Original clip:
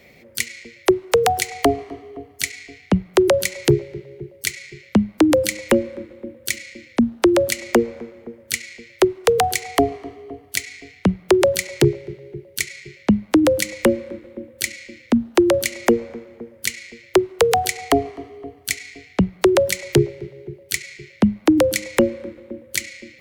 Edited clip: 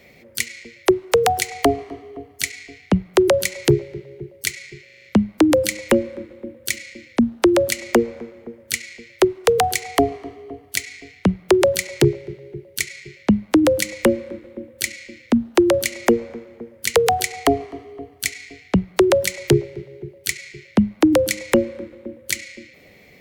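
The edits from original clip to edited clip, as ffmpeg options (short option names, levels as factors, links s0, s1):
-filter_complex "[0:a]asplit=7[s0][s1][s2][s3][s4][s5][s6];[s0]atrim=end=4.882[s7];[s1]atrim=start=4.838:end=4.882[s8];[s2]atrim=start=4.838:end=4.882[s9];[s3]atrim=start=4.838:end=4.882[s10];[s4]atrim=start=4.838:end=4.882[s11];[s5]atrim=start=4.838:end=16.752[s12];[s6]atrim=start=17.398[s13];[s7][s8]acrossfade=d=0.004:c1=hsin:c2=hsin[s14];[s14][s9]acrossfade=d=0.004:c1=hsin:c2=hsin[s15];[s15][s10]acrossfade=d=0.004:c1=hsin:c2=hsin[s16];[s16][s11]acrossfade=d=0.004:c1=hsin:c2=hsin[s17];[s17][s12]acrossfade=d=0.004:c1=hsin:c2=hsin[s18];[s18][s13]acrossfade=d=0.004:c1=hsin:c2=hsin"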